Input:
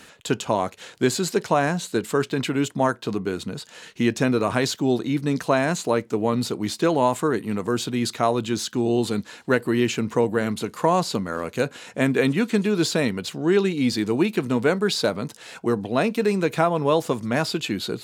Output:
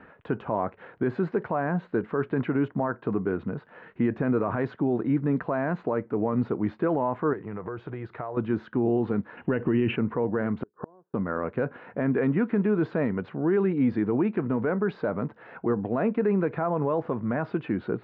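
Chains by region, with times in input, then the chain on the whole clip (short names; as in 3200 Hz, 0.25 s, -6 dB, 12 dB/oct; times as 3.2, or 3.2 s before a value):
7.33–8.37 bell 240 Hz -14.5 dB 0.42 oct + compressor 10:1, threshold -29 dBFS
9.37–9.96 synth low-pass 2800 Hz, resonance Q 8 + low shelf 480 Hz +9.5 dB
10.63–11.14 bell 390 Hz +13 dB 0.66 oct + flipped gate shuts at -22 dBFS, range -40 dB + brick-wall FIR low-pass 1800 Hz
whole clip: LPF 1700 Hz 24 dB/oct; limiter -16 dBFS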